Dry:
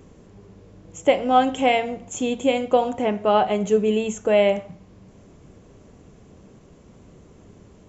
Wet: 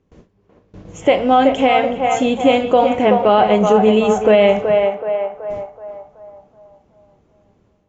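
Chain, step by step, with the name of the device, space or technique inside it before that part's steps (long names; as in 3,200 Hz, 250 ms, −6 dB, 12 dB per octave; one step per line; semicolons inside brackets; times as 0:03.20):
noise gate with hold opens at −36 dBFS
low-pass filter 5,100 Hz 12 dB per octave
feedback echo with a band-pass in the loop 376 ms, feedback 50%, band-pass 870 Hz, level −5 dB
low-bitrate web radio (automatic gain control gain up to 7.5 dB; brickwall limiter −7 dBFS, peak gain reduction 5.5 dB; level +4.5 dB; AAC 32 kbit/s 16,000 Hz)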